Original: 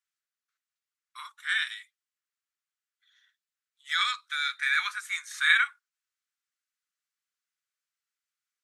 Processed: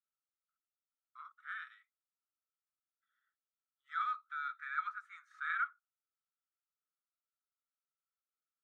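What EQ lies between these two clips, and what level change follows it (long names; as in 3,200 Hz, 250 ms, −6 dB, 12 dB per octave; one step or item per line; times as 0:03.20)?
resonant band-pass 1,300 Hz, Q 14
+1.0 dB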